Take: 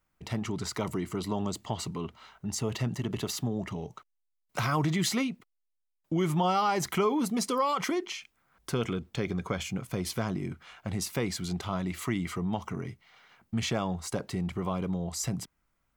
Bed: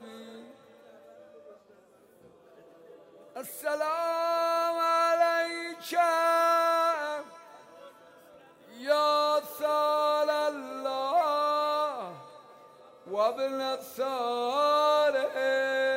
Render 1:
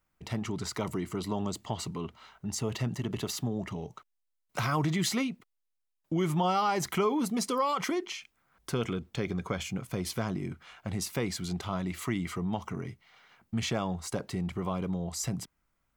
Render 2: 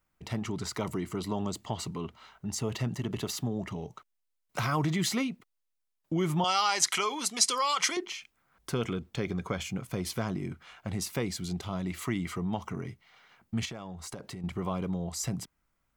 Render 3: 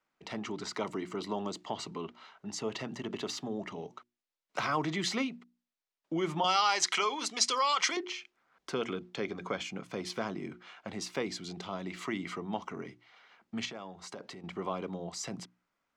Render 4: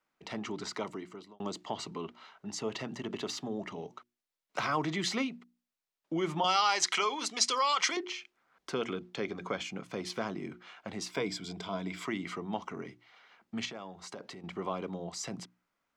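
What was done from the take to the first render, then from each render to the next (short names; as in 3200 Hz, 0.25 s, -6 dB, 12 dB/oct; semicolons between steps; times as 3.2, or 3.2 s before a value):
gain -1 dB
6.44–7.97 weighting filter ITU-R 468; 11.22–11.85 bell 1300 Hz -5 dB 1.8 oct; 13.65–14.44 compressor 4:1, threshold -38 dBFS
three-band isolator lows -21 dB, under 200 Hz, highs -23 dB, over 6800 Hz; notches 60/120/180/240/300/360 Hz
0.68–1.4 fade out; 11.11–12.05 ripple EQ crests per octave 1.7, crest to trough 9 dB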